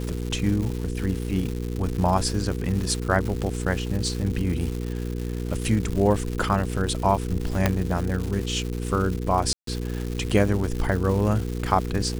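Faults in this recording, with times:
surface crackle 300 per second −29 dBFS
mains hum 60 Hz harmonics 8 −29 dBFS
0:07.66: click −5 dBFS
0:09.53–0:09.67: drop-out 143 ms

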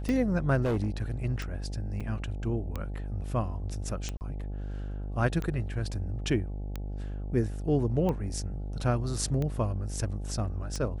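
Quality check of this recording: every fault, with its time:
mains buzz 50 Hz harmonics 17 −35 dBFS
scratch tick 45 rpm −20 dBFS
0:00.63–0:01.11: clipping −24 dBFS
0:02.00–0:02.01: drop-out 5.6 ms
0:04.17–0:04.21: drop-out 39 ms

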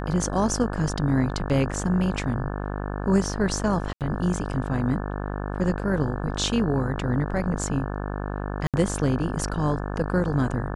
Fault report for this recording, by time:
mains buzz 50 Hz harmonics 35 −30 dBFS
0:03.93–0:04.01: drop-out 78 ms
0:08.67–0:08.74: drop-out 67 ms

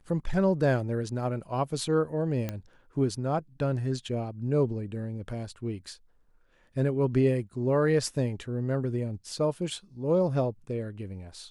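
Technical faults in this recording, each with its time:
0:02.49: click −18 dBFS

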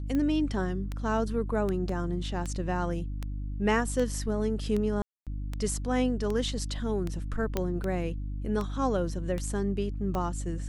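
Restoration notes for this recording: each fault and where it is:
mains hum 50 Hz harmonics 6 −34 dBFS
scratch tick 78 rpm −20 dBFS
0:01.89: drop-out 3 ms
0:05.02–0:05.27: drop-out 247 ms
0:07.57: click −14 dBFS

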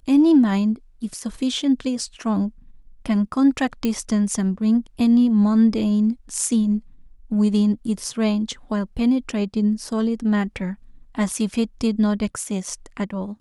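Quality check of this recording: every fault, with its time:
0:03.85: click −10 dBFS

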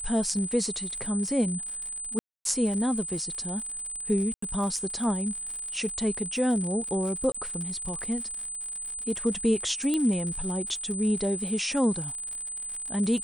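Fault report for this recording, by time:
surface crackle 94 per second −35 dBFS
whistle 8,100 Hz −33 dBFS
0:02.19–0:02.45: drop-out 262 ms
0:04.34–0:04.42: drop-out 84 ms
0:07.32–0:07.34: drop-out 25 ms
0:09.94: click −15 dBFS

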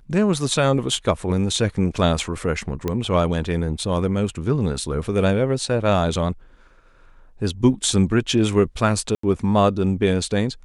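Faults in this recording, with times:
0:02.88: click −11 dBFS
0:09.15–0:09.23: drop-out 84 ms

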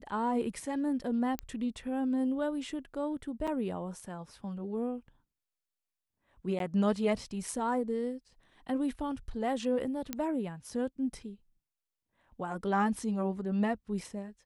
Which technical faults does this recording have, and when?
0:01.39: click −20 dBFS
0:03.47–0:03.48: drop-out 5.9 ms
0:06.59–0:06.60: drop-out 12 ms
0:10.13: click −17 dBFS

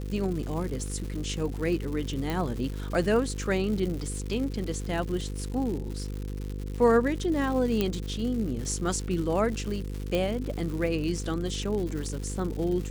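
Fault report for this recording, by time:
mains buzz 50 Hz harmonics 10 −34 dBFS
surface crackle 200 per second −34 dBFS
0:02.30: click
0:07.81: click −12 dBFS
0:10.15: click

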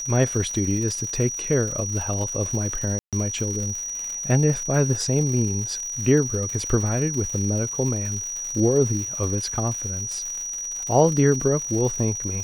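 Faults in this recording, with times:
surface crackle 190 per second −30 dBFS
whistle 5,800 Hz −28 dBFS
0:02.99–0:03.13: drop-out 137 ms

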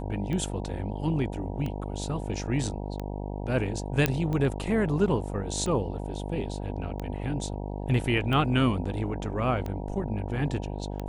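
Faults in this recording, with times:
mains buzz 50 Hz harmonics 19 −34 dBFS
scratch tick 45 rpm −21 dBFS
0:04.06: click −8 dBFS

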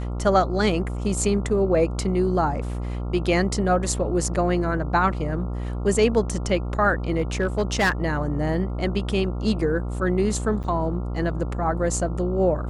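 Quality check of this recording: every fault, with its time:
mains buzz 60 Hz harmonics 23 −28 dBFS
0:07.13–0:07.92: clipping −15.5 dBFS
0:10.63–0:10.64: drop-out 8.9 ms

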